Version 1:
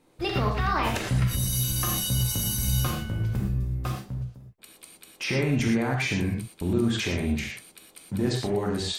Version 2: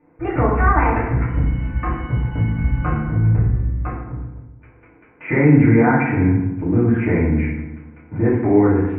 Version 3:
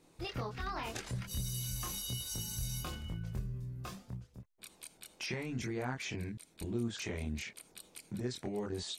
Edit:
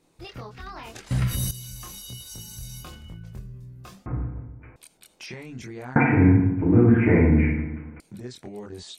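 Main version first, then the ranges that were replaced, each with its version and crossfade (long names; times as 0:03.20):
3
0:01.11–0:01.51: punch in from 1
0:04.06–0:04.76: punch in from 2
0:05.96–0:08.00: punch in from 2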